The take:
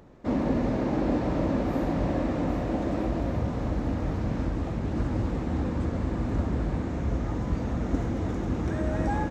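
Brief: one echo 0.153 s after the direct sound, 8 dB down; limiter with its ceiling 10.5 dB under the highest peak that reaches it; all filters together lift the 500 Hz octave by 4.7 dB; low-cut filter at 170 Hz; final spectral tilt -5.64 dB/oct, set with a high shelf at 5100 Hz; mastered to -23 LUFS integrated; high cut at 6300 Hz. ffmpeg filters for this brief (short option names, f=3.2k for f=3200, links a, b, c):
-af "highpass=170,lowpass=6.3k,equalizer=f=500:t=o:g=6,highshelf=f=5.1k:g=-6,alimiter=limit=-21.5dB:level=0:latency=1,aecho=1:1:153:0.398,volume=7dB"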